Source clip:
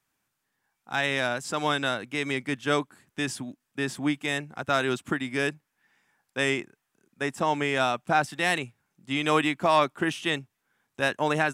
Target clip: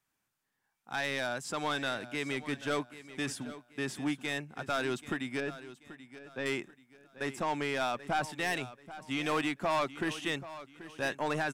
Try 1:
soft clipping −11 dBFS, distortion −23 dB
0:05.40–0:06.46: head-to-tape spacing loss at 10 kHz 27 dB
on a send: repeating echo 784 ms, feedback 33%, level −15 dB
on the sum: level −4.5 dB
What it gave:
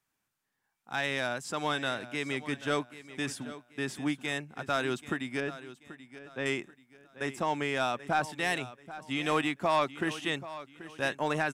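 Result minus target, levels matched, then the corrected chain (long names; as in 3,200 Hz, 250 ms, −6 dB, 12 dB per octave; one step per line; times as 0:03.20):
soft clipping: distortion −11 dB
soft clipping −20 dBFS, distortion −12 dB
0:05.40–0:06.46: head-to-tape spacing loss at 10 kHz 27 dB
on a send: repeating echo 784 ms, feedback 33%, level −15 dB
on the sum: level −4.5 dB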